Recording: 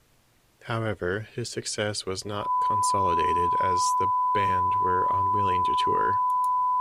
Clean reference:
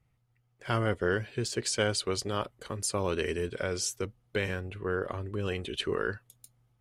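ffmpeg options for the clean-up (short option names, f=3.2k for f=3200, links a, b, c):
-af "bandreject=f=1k:w=30,agate=range=-21dB:threshold=-44dB,asetnsamples=n=441:p=0,asendcmd='6.43 volume volume -3.5dB',volume=0dB"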